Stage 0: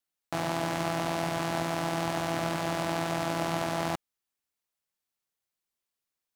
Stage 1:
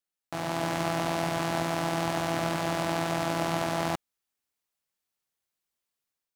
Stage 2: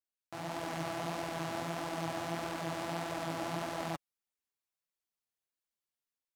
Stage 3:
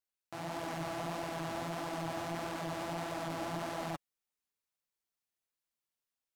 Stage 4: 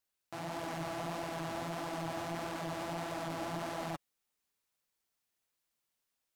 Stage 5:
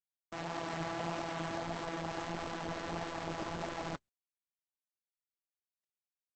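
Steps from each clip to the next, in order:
AGC gain up to 5.5 dB; gain -4 dB
flange 1.6 Hz, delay 1.7 ms, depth 8 ms, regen +6%; gain -5.5 dB
hard clip -30 dBFS, distortion -15 dB
limiter -36.5 dBFS, peak gain reduction 6.5 dB; gain +6 dB
G.711 law mismatch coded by A; gain +4.5 dB; Opus 10 kbps 48000 Hz

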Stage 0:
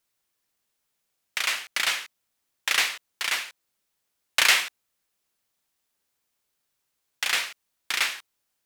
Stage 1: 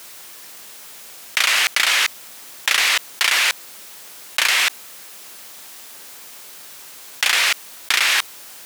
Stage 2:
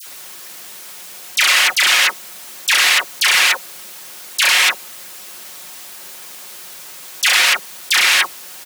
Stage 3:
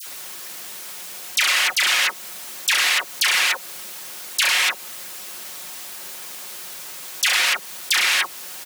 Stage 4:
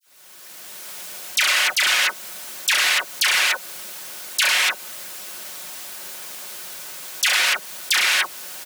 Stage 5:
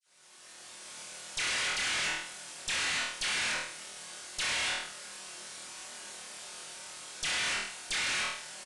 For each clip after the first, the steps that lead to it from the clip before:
HPF 300 Hz 6 dB/oct; fast leveller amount 100%; gain -1.5 dB
comb 5.5 ms, depth 44%; dispersion lows, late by 69 ms, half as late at 1500 Hz; gain +3.5 dB
compressor 2.5:1, threshold -18 dBFS, peak gain reduction 6 dB
opening faded in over 0.98 s; small resonant body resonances 610/1500 Hz, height 8 dB, ringing for 95 ms
flutter echo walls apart 4.3 m, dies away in 0.52 s; tube stage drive 23 dB, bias 0.7; downsampling 22050 Hz; gain -6.5 dB

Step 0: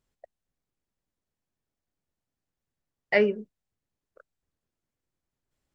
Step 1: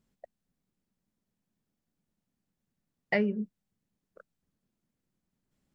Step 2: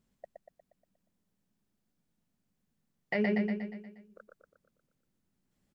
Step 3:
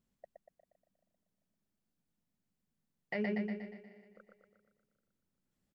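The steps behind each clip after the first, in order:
bell 200 Hz +13.5 dB 0.93 oct; compressor 10:1, threshold -24 dBFS, peak gain reduction 13 dB
feedback echo 0.119 s, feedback 53%, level -4 dB; limiter -21 dBFS, peak gain reduction 6 dB
feedback echo 0.393 s, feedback 32%, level -19 dB; gain -6 dB

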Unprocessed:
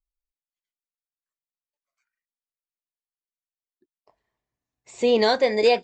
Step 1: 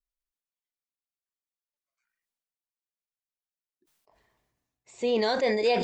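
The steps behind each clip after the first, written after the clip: sustainer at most 36 dB/s; gain -7 dB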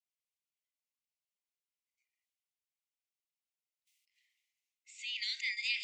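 rippled Chebyshev high-pass 2000 Hz, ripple 3 dB; high shelf 5500 Hz -9.5 dB; gain +3.5 dB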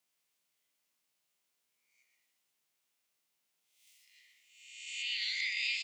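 spectral swells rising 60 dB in 0.80 s; echo 0.123 s -6.5 dB; three-band squash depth 40%; gain -2 dB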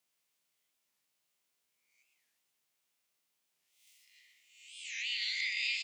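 record warp 45 rpm, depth 250 cents

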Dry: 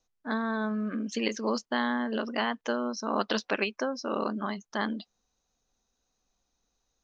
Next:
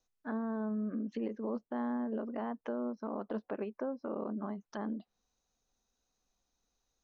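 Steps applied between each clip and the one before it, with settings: treble ducked by the level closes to 730 Hz, closed at -29 dBFS; limiter -23.5 dBFS, peak gain reduction 6 dB; gain -4 dB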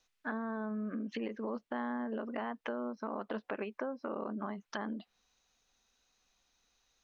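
bell 2500 Hz +12.5 dB 2.5 oct; compressor 2:1, threshold -38 dBFS, peak gain reduction 5.5 dB; gain +1 dB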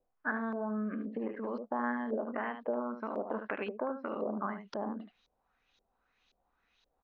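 echo 75 ms -8.5 dB; LFO low-pass saw up 1.9 Hz 490–4100 Hz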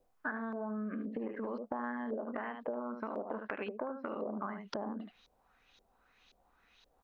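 compressor 4:1, threshold -44 dBFS, peak gain reduction 13 dB; gain +7 dB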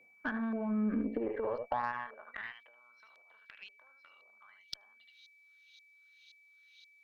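high-pass sweep 180 Hz -> 3900 Hz, 0.81–2.83; whine 2300 Hz -61 dBFS; added harmonics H 6 -26 dB, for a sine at -19.5 dBFS

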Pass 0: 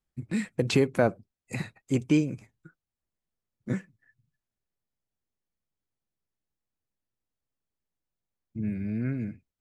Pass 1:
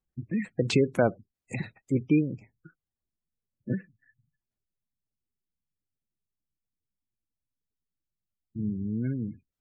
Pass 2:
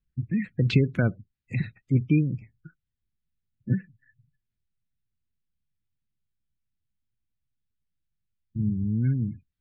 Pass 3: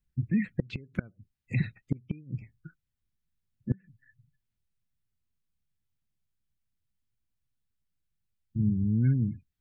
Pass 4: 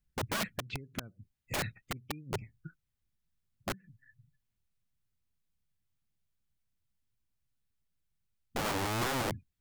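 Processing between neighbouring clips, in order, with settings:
spectral gate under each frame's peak -25 dB strong
EQ curve 130 Hz 0 dB, 890 Hz -22 dB, 1500 Hz -7 dB, 3800 Hz -8 dB, 8300 Hz -28 dB; gain +8.5 dB
flipped gate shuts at -15 dBFS, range -27 dB
wrapped overs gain 27.5 dB

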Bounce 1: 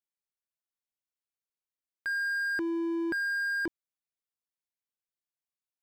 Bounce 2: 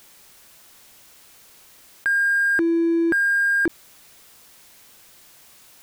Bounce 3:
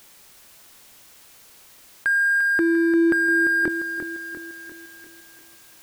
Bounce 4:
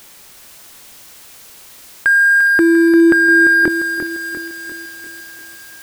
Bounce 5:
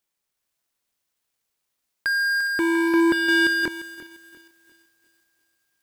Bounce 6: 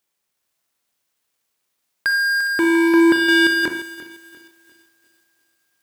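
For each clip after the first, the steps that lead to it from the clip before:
in parallel at -3 dB: hard clip -35 dBFS, distortion -9 dB; on the sum: fast leveller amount 50%; gain +8.5 dB
lo-fi delay 0.347 s, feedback 55%, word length 9-bit, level -8.5 dB
thin delay 0.411 s, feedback 71%, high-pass 3300 Hz, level -7 dB; gain +8.5 dB
power-law curve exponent 2; gain -5 dB
low shelf 62 Hz -11.5 dB; reverb, pre-delay 36 ms, DRR 7.5 dB; gain +4.5 dB

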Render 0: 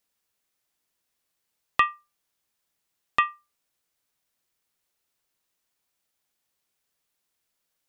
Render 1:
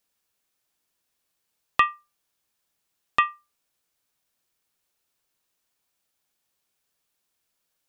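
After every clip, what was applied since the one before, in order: notch 2000 Hz, Q 21; gain +1.5 dB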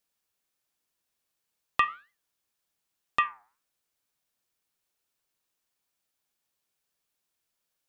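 flange 1.9 Hz, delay 5 ms, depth 4.2 ms, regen -88%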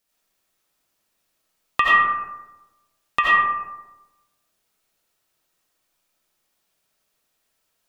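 reverb RT60 1.1 s, pre-delay 45 ms, DRR -5.5 dB; gain +4.5 dB

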